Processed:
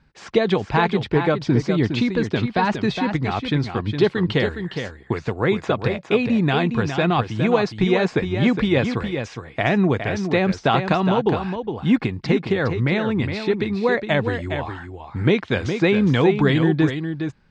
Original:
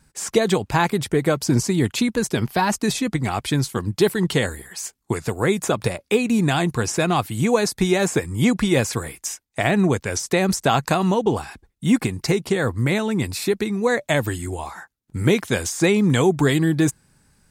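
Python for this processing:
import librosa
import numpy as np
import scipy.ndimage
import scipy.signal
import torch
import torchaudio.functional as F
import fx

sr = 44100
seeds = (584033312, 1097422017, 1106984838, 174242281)

y = scipy.signal.sosfilt(scipy.signal.butter(4, 4000.0, 'lowpass', fs=sr, output='sos'), x)
y = y + 10.0 ** (-7.5 / 20.0) * np.pad(y, (int(412 * sr / 1000.0), 0))[:len(y)]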